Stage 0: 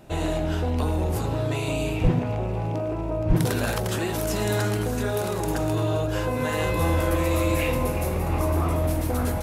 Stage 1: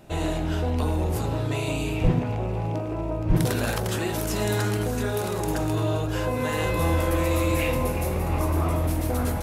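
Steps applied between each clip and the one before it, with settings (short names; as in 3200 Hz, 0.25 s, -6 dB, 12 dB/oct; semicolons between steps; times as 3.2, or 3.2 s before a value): de-hum 48.05 Hz, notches 37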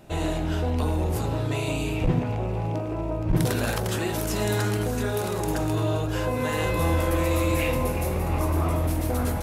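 core saturation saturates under 98 Hz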